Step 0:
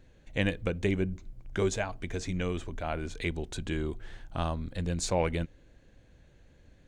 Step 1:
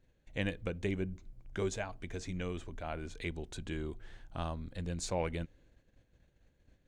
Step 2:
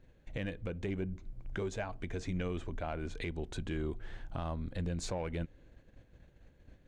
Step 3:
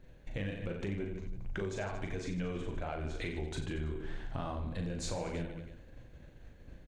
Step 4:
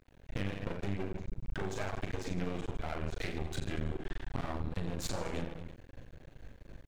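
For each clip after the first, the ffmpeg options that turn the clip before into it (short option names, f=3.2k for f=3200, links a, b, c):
-af "agate=range=-7dB:threshold=-56dB:ratio=16:detection=peak,volume=-6.5dB"
-filter_complex "[0:a]asplit=2[a][b];[b]asoftclip=type=hard:threshold=-33dB,volume=-6.5dB[c];[a][c]amix=inputs=2:normalize=0,highshelf=f=4.1k:g=-9.5,alimiter=level_in=9dB:limit=-24dB:level=0:latency=1:release=424,volume=-9dB,volume=5dB"
-af "aecho=1:1:40|90|152.5|230.6|328.3:0.631|0.398|0.251|0.158|0.1,acompressor=threshold=-39dB:ratio=3,flanger=delay=4.6:depth=4.4:regen=-72:speed=1.3:shape=triangular,volume=8dB"
-af "aeval=exprs='max(val(0),0)':c=same,volume=4.5dB"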